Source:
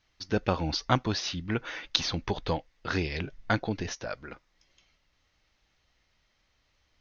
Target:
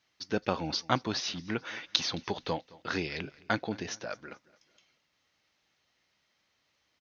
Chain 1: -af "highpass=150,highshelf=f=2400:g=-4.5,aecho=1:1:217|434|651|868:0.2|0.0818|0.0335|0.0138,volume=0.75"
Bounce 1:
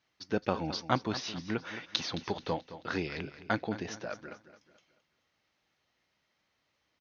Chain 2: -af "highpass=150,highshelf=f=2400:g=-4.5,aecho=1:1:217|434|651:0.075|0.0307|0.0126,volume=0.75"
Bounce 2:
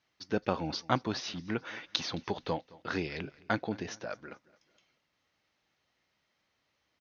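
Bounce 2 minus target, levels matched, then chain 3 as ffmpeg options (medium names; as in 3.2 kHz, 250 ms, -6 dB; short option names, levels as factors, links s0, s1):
4 kHz band -3.0 dB
-af "highpass=150,highshelf=f=2400:g=2,aecho=1:1:217|434|651:0.075|0.0307|0.0126,volume=0.75"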